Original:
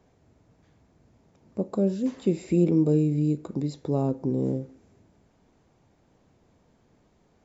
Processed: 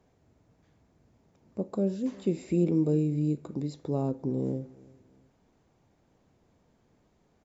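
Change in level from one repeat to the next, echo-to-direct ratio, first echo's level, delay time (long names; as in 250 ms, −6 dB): −11.0 dB, −22.5 dB, −23.0 dB, 345 ms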